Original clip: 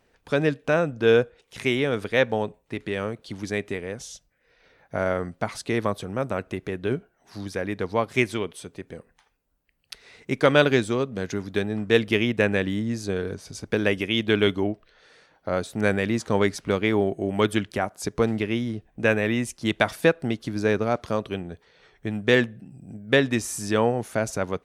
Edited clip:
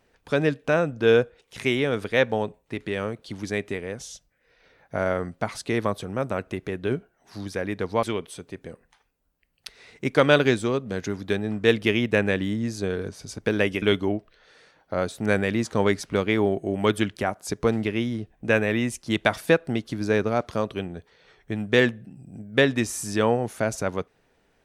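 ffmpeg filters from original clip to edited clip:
-filter_complex "[0:a]asplit=3[a][b][c];[a]atrim=end=8.032[d];[b]atrim=start=8.288:end=14.082[e];[c]atrim=start=14.368[f];[d][e]acrossfade=d=0.004:c1=hsin:c2=hsin[g];[g][f]acrossfade=d=0.004:c1=hsin:c2=hsin"

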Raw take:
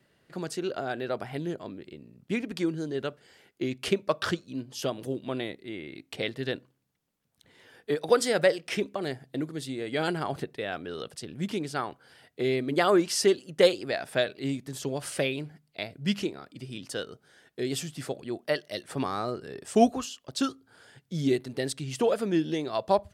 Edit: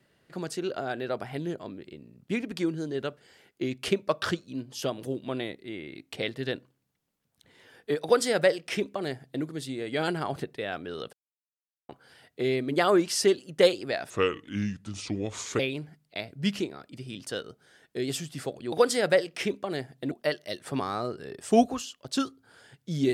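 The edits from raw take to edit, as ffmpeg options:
-filter_complex "[0:a]asplit=7[a][b][c][d][e][f][g];[a]atrim=end=11.13,asetpts=PTS-STARTPTS,afade=t=out:st=11.126:d=0.004:c=hsin[h];[b]atrim=start=11.13:end=11.89,asetpts=PTS-STARTPTS,volume=0[i];[c]atrim=start=11.89:end=14.104,asetpts=PTS-STARTPTS,afade=t=in:d=0.004:c=hsin[j];[d]atrim=start=14.1:end=15.22,asetpts=PTS-STARTPTS,asetrate=33075,aresample=44100[k];[e]atrim=start=15.216:end=18.352[l];[f]atrim=start=8.038:end=9.432[m];[g]atrim=start=18.348[n];[h][i][j]concat=n=3:v=0:a=1[o];[o][k]acrossfade=d=0.004:c1=hsin:c2=hsin[p];[p][l]acrossfade=d=0.004:c1=hsin:c2=hsin[q];[q][m]acrossfade=d=0.004:c1=hsin:c2=hsin[r];[r][n]acrossfade=d=0.004:c1=hsin:c2=hsin"

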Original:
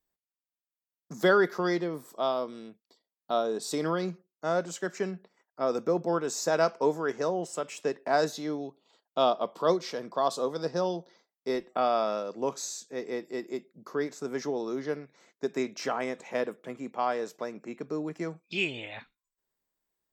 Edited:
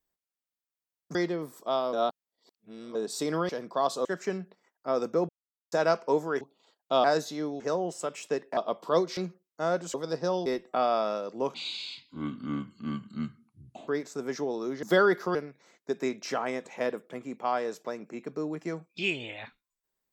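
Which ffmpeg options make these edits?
-filter_complex "[0:a]asplit=19[a][b][c][d][e][f][g][h][i][j][k][l][m][n][o][p][q][r][s];[a]atrim=end=1.152[t];[b]atrim=start=1.668:end=2.452[u];[c]atrim=start=2.448:end=3.472,asetpts=PTS-STARTPTS,areverse[v];[d]atrim=start=3.468:end=4.012[w];[e]atrim=start=9.898:end=10.462[x];[f]atrim=start=4.778:end=6.02,asetpts=PTS-STARTPTS,afade=t=out:st=1.238:d=0.004:c=hsin[y];[g]atrim=start=6.02:end=6.45,asetpts=PTS-STARTPTS,volume=0[z];[h]atrim=start=6.45:end=7.142,asetpts=PTS-STARTPTS,afade=t=in:d=0.004:c=hsin[aa];[i]atrim=start=8.668:end=9.302[ab];[j]atrim=start=8.108:end=8.672[ac];[k]atrim=start=7.138:end=8.112[ad];[l]atrim=start=9.298:end=9.902[ae];[m]atrim=start=4.008:end=4.782[af];[n]atrim=start=10.458:end=10.982[ag];[o]atrim=start=11.478:end=12.564[ah];[p]atrim=start=12.56:end=13.94,asetpts=PTS-STARTPTS,asetrate=26019,aresample=44100,atrim=end_sample=103149,asetpts=PTS-STARTPTS[ai];[q]atrim=start=13.936:end=14.892[aj];[r]atrim=start=1.148:end=1.672[ak];[s]atrim=start=14.888[al];[t][u]acrossfade=d=0.004:c1=hsin:c2=hsin[am];[am][v]acrossfade=d=0.004:c1=hsin:c2=hsin[an];[an][w]acrossfade=d=0.004:c1=hsin:c2=hsin[ao];[ao][x]acrossfade=d=0.004:c1=hsin:c2=hsin[ap];[y][z][aa]concat=n=3:v=0:a=1[aq];[ap][aq]acrossfade=d=0.004:c1=hsin:c2=hsin[ar];[ar][ab]acrossfade=d=0.004:c1=hsin:c2=hsin[as];[as][ac]acrossfade=d=0.004:c1=hsin:c2=hsin[at];[at][ad]acrossfade=d=0.004:c1=hsin:c2=hsin[au];[au][ae]acrossfade=d=0.004:c1=hsin:c2=hsin[av];[av][af]acrossfade=d=0.004:c1=hsin:c2=hsin[aw];[aw][ag]acrossfade=d=0.004:c1=hsin:c2=hsin[ax];[ax][ah]acrossfade=d=0.004:c1=hsin:c2=hsin[ay];[ay][ai]acrossfade=d=0.004:c1=hsin:c2=hsin[az];[az][aj]acrossfade=d=0.004:c1=hsin:c2=hsin[ba];[ba][ak]acrossfade=d=0.004:c1=hsin:c2=hsin[bb];[bb][al]acrossfade=d=0.004:c1=hsin:c2=hsin"

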